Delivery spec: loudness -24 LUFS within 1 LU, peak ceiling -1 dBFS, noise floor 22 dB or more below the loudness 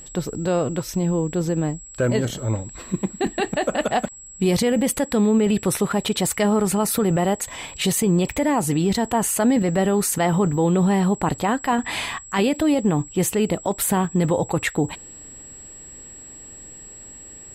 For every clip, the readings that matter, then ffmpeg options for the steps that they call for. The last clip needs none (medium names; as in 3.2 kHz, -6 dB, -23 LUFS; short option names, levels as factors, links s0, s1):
steady tone 7.7 kHz; tone level -39 dBFS; loudness -21.5 LUFS; peak level -9.5 dBFS; loudness target -24.0 LUFS
-> -af "bandreject=f=7700:w=30"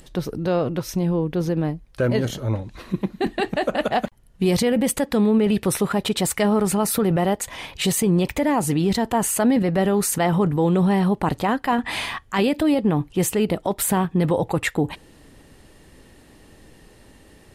steady tone not found; loudness -21.5 LUFS; peak level -9.5 dBFS; loudness target -24.0 LUFS
-> -af "volume=0.75"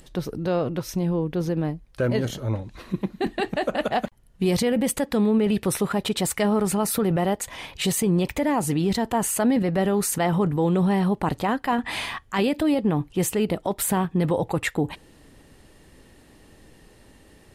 loudness -24.0 LUFS; peak level -12.0 dBFS; noise floor -53 dBFS